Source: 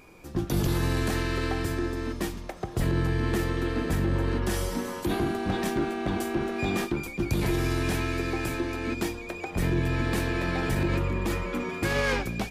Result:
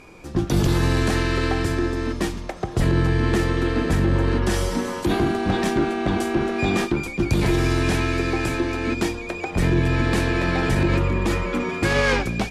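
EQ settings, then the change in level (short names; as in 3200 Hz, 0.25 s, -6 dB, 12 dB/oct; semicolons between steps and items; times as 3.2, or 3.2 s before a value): LPF 9100 Hz 12 dB/oct; +6.5 dB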